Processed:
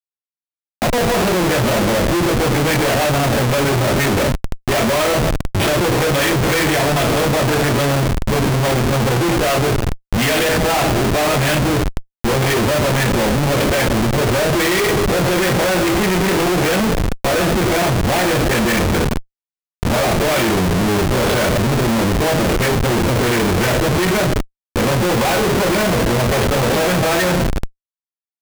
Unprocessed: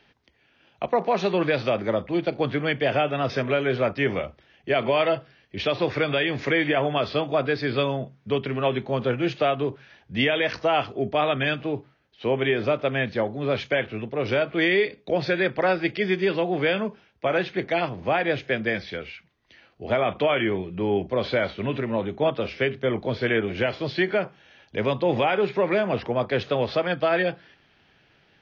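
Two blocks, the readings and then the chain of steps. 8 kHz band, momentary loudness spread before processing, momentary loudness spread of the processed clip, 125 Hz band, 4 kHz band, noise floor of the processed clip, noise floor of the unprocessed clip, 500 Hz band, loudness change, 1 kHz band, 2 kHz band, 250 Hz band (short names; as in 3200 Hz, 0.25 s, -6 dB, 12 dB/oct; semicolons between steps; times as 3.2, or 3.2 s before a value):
n/a, 6 LU, 4 LU, +14.0 dB, +10.5 dB, under -85 dBFS, -62 dBFS, +6.0 dB, +8.5 dB, +9.0 dB, +7.5 dB, +10.5 dB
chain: two-slope reverb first 0.25 s, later 2.2 s, from -19 dB, DRR -9 dB; Schmitt trigger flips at -22 dBFS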